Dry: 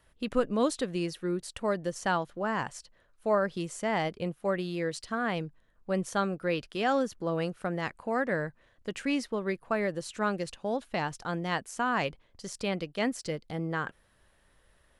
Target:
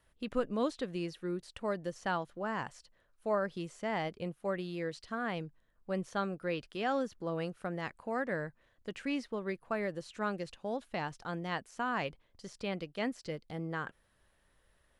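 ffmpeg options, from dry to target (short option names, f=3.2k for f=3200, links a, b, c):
-filter_complex "[0:a]acrossover=split=5000[a][b];[b]acompressor=threshold=-53dB:ratio=4:attack=1:release=60[c];[a][c]amix=inputs=2:normalize=0,volume=-5.5dB"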